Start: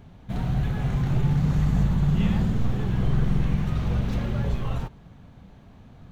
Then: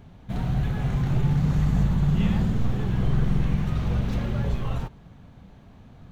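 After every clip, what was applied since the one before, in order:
no processing that can be heard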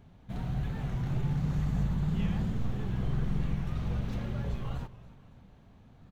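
repeating echo 274 ms, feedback 50%, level −18 dB
wow of a warped record 45 rpm, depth 100 cents
level −8 dB

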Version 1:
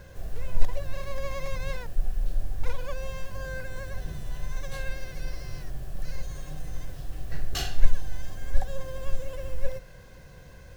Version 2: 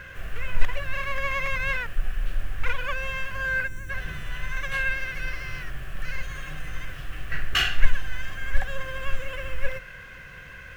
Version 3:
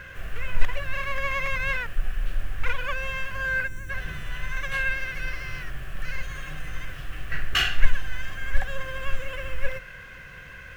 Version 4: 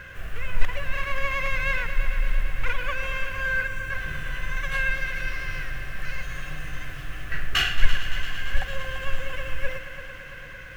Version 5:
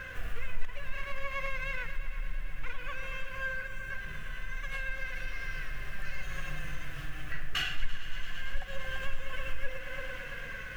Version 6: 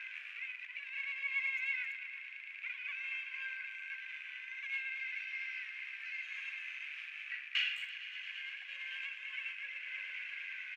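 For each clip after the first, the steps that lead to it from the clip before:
gain on a spectral selection 0:03.67–0:03.90, 390–5,600 Hz −14 dB; flat-topped bell 1,900 Hz +15.5 dB
no processing that can be heard
echo machine with several playback heads 113 ms, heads all three, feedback 75%, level −16 dB
downward compressor 2 to 1, threshold −31 dBFS, peak gain reduction 13.5 dB; flanger 0.2 Hz, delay 3.8 ms, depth 3 ms, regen +54%; speech leveller within 4 dB 2 s
loose part that buzzes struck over −49 dBFS, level −37 dBFS; four-pole ladder band-pass 2,500 Hz, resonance 70%; far-end echo of a speakerphone 210 ms, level −13 dB; level +6 dB

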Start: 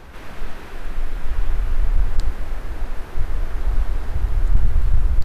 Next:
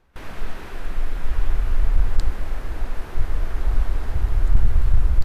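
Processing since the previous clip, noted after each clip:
noise gate with hold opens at −26 dBFS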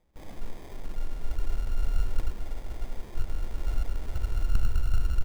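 sample-rate reduction 1,400 Hz, jitter 0%
level −8.5 dB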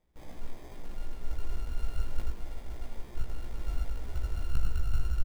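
double-tracking delay 17 ms −3 dB
level −5 dB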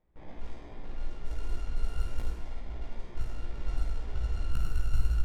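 low-pass that shuts in the quiet parts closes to 2,200 Hz, open at −19.5 dBFS
flutter between parallel walls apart 8.9 metres, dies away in 0.51 s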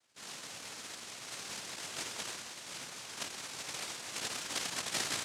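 cochlear-implant simulation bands 1
level +4 dB

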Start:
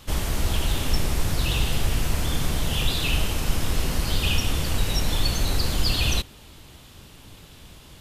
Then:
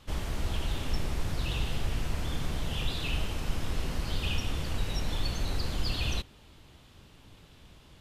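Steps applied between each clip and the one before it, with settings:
high-shelf EQ 7,100 Hz −11.5 dB
level −7.5 dB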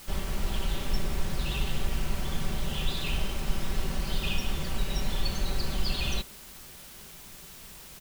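comb filter 5.2 ms, depth 62%
bit-depth reduction 8 bits, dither triangular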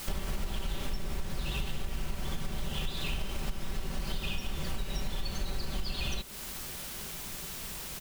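downward compressor 10 to 1, threshold −35 dBFS, peak gain reduction 17 dB
level +6.5 dB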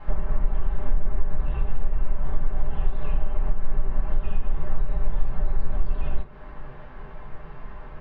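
transistor ladder low-pass 1,800 Hz, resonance 25%
convolution reverb RT60 0.20 s, pre-delay 3 ms, DRR −5 dB

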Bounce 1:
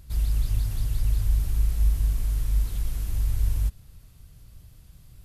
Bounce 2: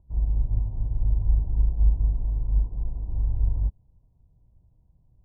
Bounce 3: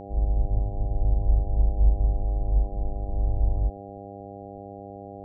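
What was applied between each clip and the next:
Chebyshev low-pass filter 1,000 Hz, order 6; expander for the loud parts 1.5 to 1, over −44 dBFS; level +3.5 dB
hum with harmonics 100 Hz, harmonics 8, −40 dBFS 0 dB per octave

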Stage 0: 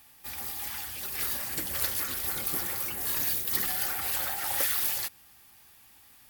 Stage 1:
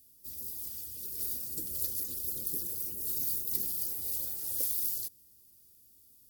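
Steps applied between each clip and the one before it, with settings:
drawn EQ curve 480 Hz 0 dB, 710 Hz −20 dB, 2,100 Hz −24 dB, 4,900 Hz −2 dB, 13,000 Hz +3 dB
level −6 dB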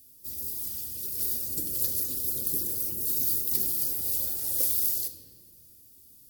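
in parallel at −7.5 dB: wave folding −20.5 dBFS
on the sum: convolution reverb RT60 1.7 s, pre-delay 8 ms, DRR 6.5 dB
level +2.5 dB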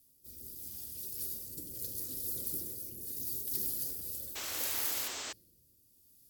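rotating-speaker cabinet horn 0.75 Hz
sound drawn into the spectrogram noise, 0:04.35–0:05.33, 230–8,300 Hz −35 dBFS
level −6 dB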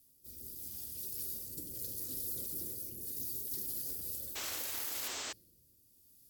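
brickwall limiter −28 dBFS, peak gain reduction 8 dB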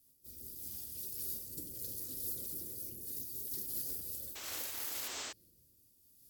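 amplitude modulation by smooth noise, depth 60%
level +1.5 dB

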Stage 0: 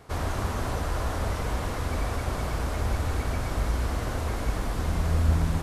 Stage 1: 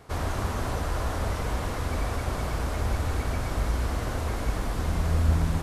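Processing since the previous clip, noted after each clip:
no processing that can be heard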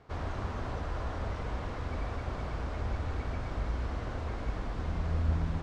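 high-frequency loss of the air 140 metres
level −6.5 dB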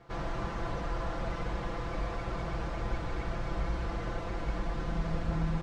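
comb filter 5.9 ms, depth 88%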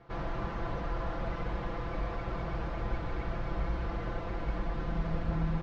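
high-frequency loss of the air 140 metres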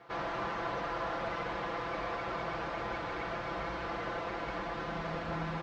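high-pass filter 660 Hz 6 dB per octave
level +6 dB

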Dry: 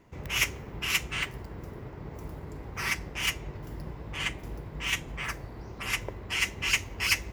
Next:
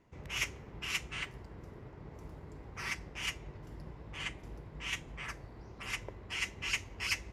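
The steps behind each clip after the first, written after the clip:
low-pass filter 9,500 Hz 12 dB per octave
level −8 dB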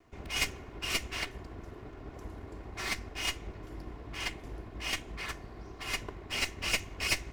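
lower of the sound and its delayed copy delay 2.8 ms
level +5.5 dB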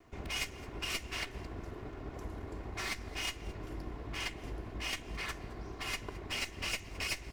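downward compressor 3 to 1, threshold −38 dBFS, peak gain reduction 11 dB
echo with shifted repeats 217 ms, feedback 31%, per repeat −67 Hz, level −20 dB
level +2 dB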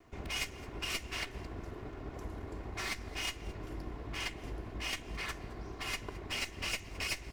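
no processing that can be heard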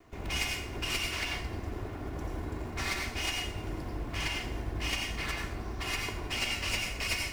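in parallel at −3 dB: floating-point word with a short mantissa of 2 bits
on the sum: dense smooth reverb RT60 0.55 s, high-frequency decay 0.9×, pre-delay 75 ms, DRR 0.5 dB
level −2 dB

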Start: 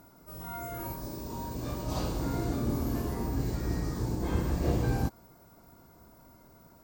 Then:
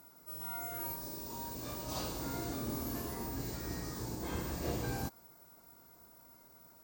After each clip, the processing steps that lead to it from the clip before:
spectral tilt +2 dB per octave
level −4.5 dB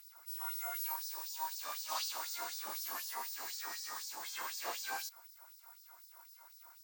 auto-filter high-pass sine 4 Hz 890–5,200 Hz
level +1.5 dB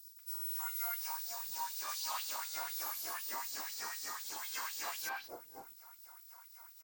soft clipping −31.5 dBFS, distortion −22 dB
floating-point word with a short mantissa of 2 bits
three-band delay without the direct sound highs, mids, lows 190/650 ms, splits 640/3,900 Hz
level +2.5 dB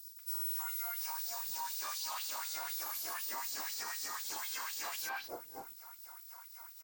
brickwall limiter −35 dBFS, peak gain reduction 7.5 dB
level +4 dB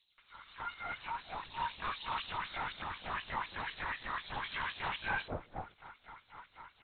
linear-prediction vocoder at 8 kHz whisper
level +6 dB

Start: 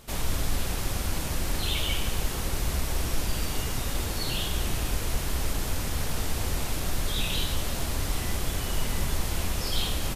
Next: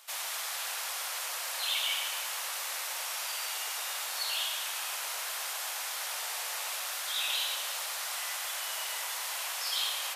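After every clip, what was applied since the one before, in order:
Bessel high-pass filter 1,100 Hz, order 8
on a send: tape delay 112 ms, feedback 77%, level −3 dB, low-pass 2,200 Hz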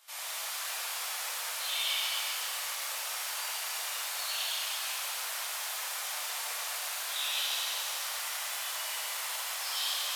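high-pass filter 380 Hz 12 dB per octave
reverb with rising layers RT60 2.1 s, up +7 semitones, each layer −8 dB, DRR −6.5 dB
level −8 dB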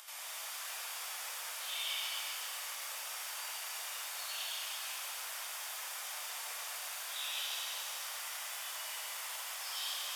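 low-shelf EQ 150 Hz −9.5 dB
notch filter 4,100 Hz, Q 13
upward compression, threshold −37 dBFS
level −6 dB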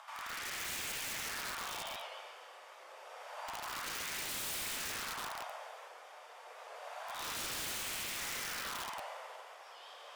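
LFO wah 0.28 Hz 310–2,300 Hz, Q 2.2
wrap-around overflow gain 46 dB
wow of a warped record 78 rpm, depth 100 cents
level +11.5 dB

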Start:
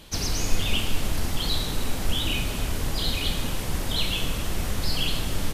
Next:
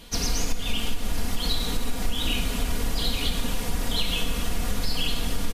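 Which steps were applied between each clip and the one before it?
comb filter 4.2 ms, depth 62%
downward compressor 10 to 1, threshold −18 dBFS, peak gain reduction 10.5 dB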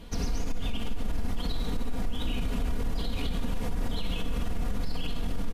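high-shelf EQ 2,500 Hz −11.5 dB
brickwall limiter −24 dBFS, peak gain reduction 10.5 dB
low-shelf EQ 320 Hz +4 dB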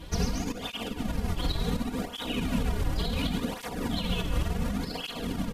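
through-zero flanger with one copy inverted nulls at 0.69 Hz, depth 4.7 ms
level +7.5 dB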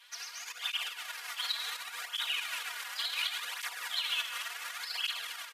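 four-pole ladder high-pass 1,200 Hz, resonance 25%
automatic gain control gain up to 8.5 dB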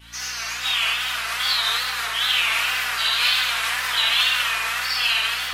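convolution reverb RT60 2.4 s, pre-delay 5 ms, DRR −11.5 dB
mains hum 60 Hz, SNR 27 dB
tape wow and flutter 110 cents
level +4.5 dB

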